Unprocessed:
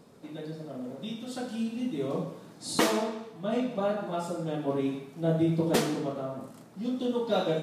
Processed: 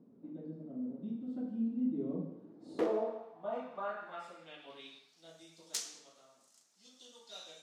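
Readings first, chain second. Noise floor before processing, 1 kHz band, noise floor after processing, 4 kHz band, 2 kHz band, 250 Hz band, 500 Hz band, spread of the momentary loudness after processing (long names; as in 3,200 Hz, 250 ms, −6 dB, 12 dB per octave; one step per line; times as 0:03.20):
−51 dBFS, −10.5 dB, −68 dBFS, −11.0 dB, −13.5 dB, −9.0 dB, −10.5 dB, 22 LU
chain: wrap-around overflow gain 14.5 dB
hum removal 74.14 Hz, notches 36
band-pass filter sweep 250 Hz → 6,300 Hz, 0:02.31–0:05.40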